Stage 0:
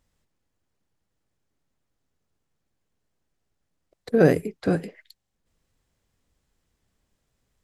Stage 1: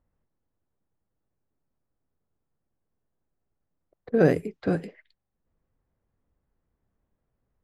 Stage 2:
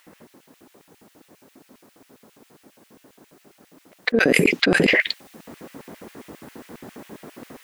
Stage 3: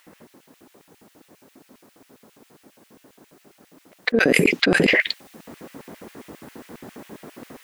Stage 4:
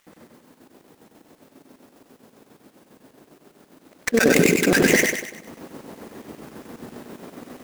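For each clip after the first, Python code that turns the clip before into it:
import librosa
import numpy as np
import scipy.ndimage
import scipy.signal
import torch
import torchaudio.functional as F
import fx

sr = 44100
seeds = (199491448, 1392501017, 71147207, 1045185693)

y1 = fx.env_lowpass(x, sr, base_hz=1300.0, full_db=-21.5)
y1 = fx.high_shelf(y1, sr, hz=8400.0, db=-10.5)
y1 = F.gain(torch.from_numpy(y1), -2.5).numpy()
y2 = fx.rider(y1, sr, range_db=10, speed_s=0.5)
y2 = fx.filter_lfo_highpass(y2, sr, shape='square', hz=7.4, low_hz=260.0, high_hz=2400.0, q=1.7)
y2 = fx.env_flatten(y2, sr, amount_pct=100)
y2 = F.gain(torch.from_numpy(y2), -1.5).numpy()
y3 = y2
y4 = fx.dead_time(y3, sr, dead_ms=0.11)
y4 = fx.echo_feedback(y4, sr, ms=97, feedback_pct=44, wet_db=-3.5)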